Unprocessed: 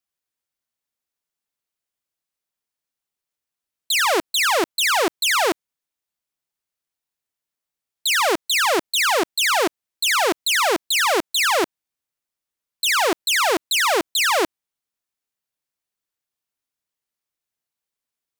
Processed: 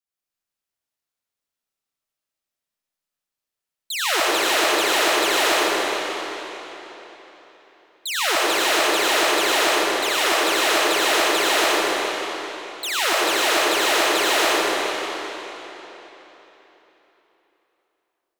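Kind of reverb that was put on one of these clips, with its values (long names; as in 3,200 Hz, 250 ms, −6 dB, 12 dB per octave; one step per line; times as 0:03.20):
comb and all-pass reverb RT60 3.8 s, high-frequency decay 0.9×, pre-delay 50 ms, DRR −8.5 dB
level −8 dB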